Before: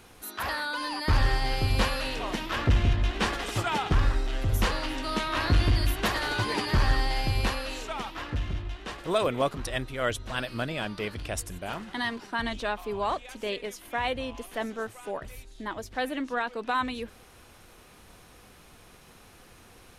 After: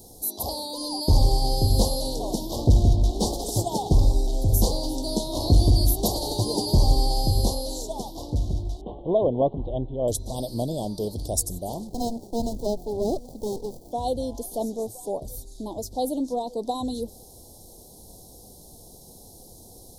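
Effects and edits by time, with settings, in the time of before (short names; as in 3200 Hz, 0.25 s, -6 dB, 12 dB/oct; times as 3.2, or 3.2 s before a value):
8.81–10.08 steep low-pass 3200 Hz 72 dB/oct
11.87–13.92 running maximum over 33 samples
whole clip: inverse Chebyshev band-stop 1300–2600 Hz, stop band 50 dB; high shelf 9400 Hz +11 dB; gain +5.5 dB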